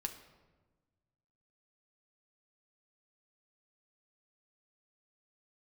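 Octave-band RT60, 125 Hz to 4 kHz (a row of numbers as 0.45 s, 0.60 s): 2.1 s, 1.7 s, 1.4 s, 1.2 s, 0.95 s, 0.80 s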